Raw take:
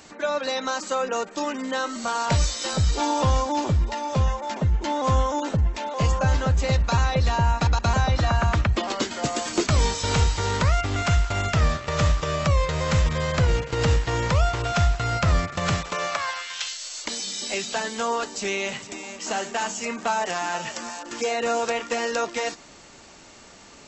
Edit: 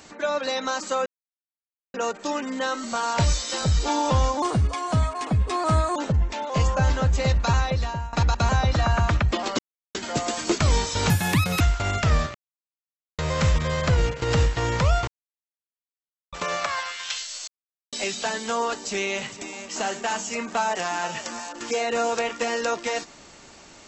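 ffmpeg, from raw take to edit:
-filter_complex "[0:a]asplit=14[a][b][c][d][e][f][g][h][i][j][k][l][m][n];[a]atrim=end=1.06,asetpts=PTS-STARTPTS,afade=t=out:st=1.056:d=0.004:c=hsin,apad=pad_dur=0.88[o];[b]atrim=start=1.06:end=3.544,asetpts=PTS-STARTPTS,afade=t=in:d=0.004:c=hsin[p];[c]atrim=start=3.54:end=5.4,asetpts=PTS-STARTPTS,asetrate=53361,aresample=44100,atrim=end_sample=67790,asetpts=PTS-STARTPTS[q];[d]atrim=start=5.396:end=7.57,asetpts=PTS-STARTPTS,afade=t=out:st=1.604:d=0.57:silence=0.133352[r];[e]atrim=start=7.57:end=9.03,asetpts=PTS-STARTPTS,afade=t=in:d=0.004:c=hsin:silence=0.133352,afade=t=out:st=1.456:d=0.004:c=hsin,apad=pad_dur=0.36[s];[f]atrim=start=9.03:end=10.184,asetpts=PTS-STARTPTS,afade=t=in:d=0.004:c=hsin[t];[g]atrim=start=10.18:end=11.11,asetpts=PTS-STARTPTS,asetrate=80703,aresample=44100,atrim=end_sample=22411,asetpts=PTS-STARTPTS[u];[h]atrim=start=11.106:end=11.85,asetpts=PTS-STARTPTS,afade=t=out:st=0.74:d=0.004:c=hsin[v];[i]atrim=start=11.85:end=12.69,asetpts=PTS-STARTPTS,volume=0[w];[j]atrim=start=12.69:end=14.58,asetpts=PTS-STARTPTS,afade=t=in:d=0.004:c=hsin,afade=t=out:st=1.886:d=0.004:c=hsin[x];[k]atrim=start=14.58:end=15.83,asetpts=PTS-STARTPTS,volume=0[y];[l]atrim=start=15.83:end=16.98,asetpts=PTS-STARTPTS,afade=t=in:d=0.004:c=hsin,afade=t=out:st=1.146:d=0.004:c=hsin[z];[m]atrim=start=16.98:end=17.43,asetpts=PTS-STARTPTS,volume=0[aa];[n]atrim=start=17.43,asetpts=PTS-STARTPTS,afade=t=in:d=0.004:c=hsin[ab];[o][p]concat=n=2:v=0:a=1[ac];[ac][q]acrossfade=d=0.004:c1=hsin:c2=hsin[ad];[r][s][t]concat=n=3:v=0:a=1[ae];[ad][ae]acrossfade=d=0.004:c1=hsin:c2=hsin[af];[af][u]acrossfade=d=0.004:c1=hsin:c2=hsin[ag];[v][w][x][y][z][aa][ab]concat=n=7:v=0:a=1[ah];[ag][ah]acrossfade=d=0.004:c1=hsin:c2=hsin"

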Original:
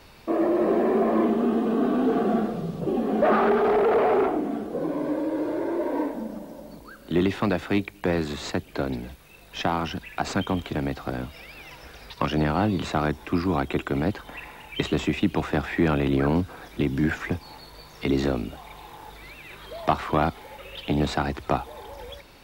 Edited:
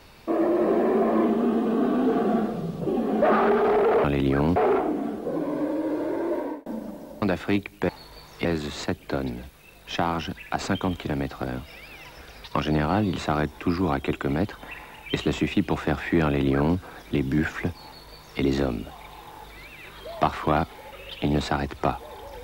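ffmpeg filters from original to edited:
-filter_complex "[0:a]asplit=7[a][b][c][d][e][f][g];[a]atrim=end=4.042[h];[b]atrim=start=15.908:end=16.432[i];[c]atrim=start=4.038:end=6.14,asetpts=PTS-STARTPTS,afade=t=out:st=1.802:d=0.3[j];[d]atrim=start=6.14:end=6.702,asetpts=PTS-STARTPTS,afade=t=in:d=0.004:c=hsin[k];[e]atrim=start=7.438:end=8.112[l];[f]atrim=start=17.508:end=18.072[m];[g]atrim=start=8.108[n];[h][i]acrossfade=d=0.004:c1=hsin:c2=hsin[o];[j][k]concat=n=2:v=0:a=1[p];[o][p]acrossfade=d=0.004:c1=hsin:c2=hsin[q];[q][l]acrossfade=d=0.004:c1=hsin:c2=hsin[r];[r][m]acrossfade=d=0.004:c1=hsin:c2=hsin[s];[s][n]acrossfade=d=0.004:c1=hsin:c2=hsin"

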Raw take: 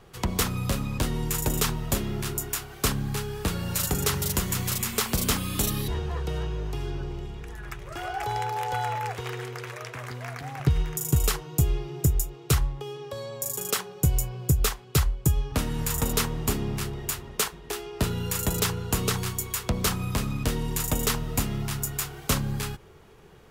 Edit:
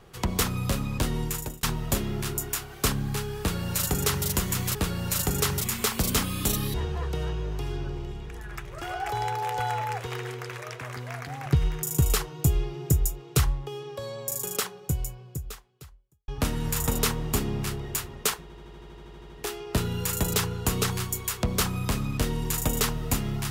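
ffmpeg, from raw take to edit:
-filter_complex "[0:a]asplit=16[a][b][c][d][e][f][g][h][i][j][k][l][m][n][o][p];[a]atrim=end=1.63,asetpts=PTS-STARTPTS,afade=t=out:st=1.21:d=0.42[q];[b]atrim=start=1.63:end=4.752,asetpts=PTS-STARTPTS,afade=t=in:d=0.004:c=hsin[r];[c]atrim=start=3.388:end=4.252[s];[d]atrim=start=4.748:end=15.42,asetpts=PTS-STARTPTS,afade=t=out:st=8.832:d=1.84:c=qua[t];[e]atrim=start=15.42:end=17.642,asetpts=PTS-STARTPTS,afade=t=in:d=0.004:c=hsin[u];[f]atrim=start=17.558:end=17.642[v];[g]atrim=start=17.558:end=17.642[w];[h]atrim=start=17.558:end=17.642[x];[i]atrim=start=17.558:end=17.642[y];[j]atrim=start=17.558:end=17.642[z];[k]atrim=start=17.558:end=17.642[aa];[l]atrim=start=17.558:end=17.642[ab];[m]atrim=start=17.558:end=17.642[ac];[n]atrim=start=17.558:end=17.642[ad];[o]atrim=start=17.558:end=17.642[ae];[p]atrim=start=17.558[af];[q][r]concat=n=2:v=0:a=1[ag];[ag][s]acrossfade=d=0.004:c1=hsin:c2=hsin[ah];[t][u]concat=n=2:v=0:a=1[ai];[ah][ai]acrossfade=d=0.004:c1=hsin:c2=hsin[aj];[aj][v]acrossfade=d=0.004:c1=hsin:c2=hsin[ak];[ak][w]acrossfade=d=0.004:c1=hsin:c2=hsin[al];[al][x]acrossfade=d=0.004:c1=hsin:c2=hsin[am];[am][y]acrossfade=d=0.004:c1=hsin:c2=hsin[an];[an][z]acrossfade=d=0.004:c1=hsin:c2=hsin[ao];[ao][aa]acrossfade=d=0.004:c1=hsin:c2=hsin[ap];[ap][ab]acrossfade=d=0.004:c1=hsin:c2=hsin[aq];[aq][ac]acrossfade=d=0.004:c1=hsin:c2=hsin[ar];[ar][ad]acrossfade=d=0.004:c1=hsin:c2=hsin[as];[as][ae]acrossfade=d=0.004:c1=hsin:c2=hsin[at];[at][af]acrossfade=d=0.004:c1=hsin:c2=hsin"

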